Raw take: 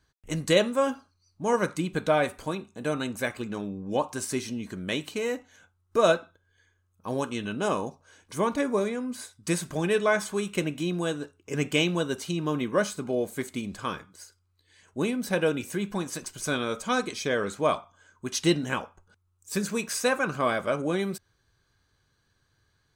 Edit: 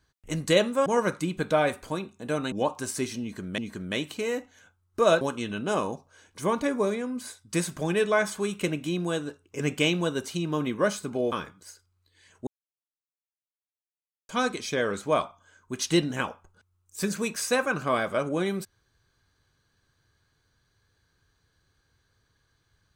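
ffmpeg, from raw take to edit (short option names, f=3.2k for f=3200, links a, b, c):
-filter_complex "[0:a]asplit=8[a][b][c][d][e][f][g][h];[a]atrim=end=0.862[i];[b]atrim=start=1.418:end=3.082[j];[c]atrim=start=3.858:end=4.922[k];[d]atrim=start=4.548:end=6.182[l];[e]atrim=start=7.148:end=13.262[m];[f]atrim=start=13.848:end=15,asetpts=PTS-STARTPTS,afade=t=out:st=1.148:d=0.004:c=hsin[n];[g]atrim=start=15:end=16.82,asetpts=PTS-STARTPTS,volume=0[o];[h]atrim=start=16.82,asetpts=PTS-STARTPTS,afade=t=in:d=0.004:c=hsin[p];[i][j]acrossfade=d=0.004:c1=hsin:c2=hsin[q];[q][k]acrossfade=d=0.004:c1=hsin:c2=hsin[r];[r][l]acrossfade=d=0.004:c1=hsin:c2=hsin[s];[s][m]acrossfade=d=0.004:c1=hsin:c2=hsin[t];[n][o][p]concat=n=3:v=0:a=1[u];[t][u]acrossfade=d=0.004:c1=hsin:c2=hsin"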